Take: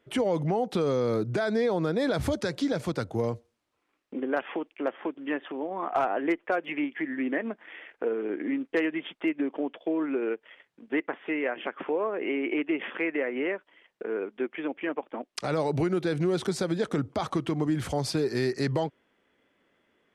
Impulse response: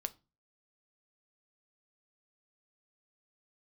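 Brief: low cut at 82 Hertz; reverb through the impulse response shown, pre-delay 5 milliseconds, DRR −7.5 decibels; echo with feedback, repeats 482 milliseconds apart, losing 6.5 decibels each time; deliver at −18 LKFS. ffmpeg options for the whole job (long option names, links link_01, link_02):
-filter_complex "[0:a]highpass=82,aecho=1:1:482|964|1446|1928|2410|2892:0.473|0.222|0.105|0.0491|0.0231|0.0109,asplit=2[link_01][link_02];[1:a]atrim=start_sample=2205,adelay=5[link_03];[link_02][link_03]afir=irnorm=-1:irlink=0,volume=8.5dB[link_04];[link_01][link_04]amix=inputs=2:normalize=0,volume=3dB"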